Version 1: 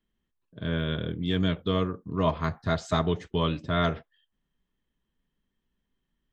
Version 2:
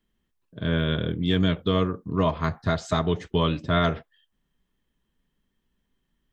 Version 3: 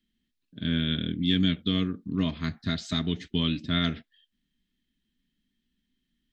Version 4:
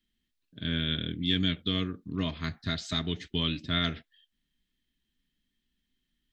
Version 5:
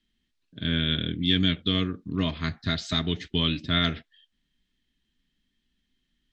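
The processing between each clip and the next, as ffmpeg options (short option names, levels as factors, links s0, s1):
-af "alimiter=limit=0.178:level=0:latency=1:release=273,volume=1.68"
-af "equalizer=f=125:t=o:w=1:g=-3,equalizer=f=250:t=o:w=1:g=12,equalizer=f=500:t=o:w=1:g=-10,equalizer=f=1000:t=o:w=1:g=-11,equalizer=f=2000:t=o:w=1:g=5,equalizer=f=4000:t=o:w=1:g=10,volume=0.501"
-af "equalizer=f=220:w=1.4:g=-7"
-af "lowpass=7000,volume=1.68"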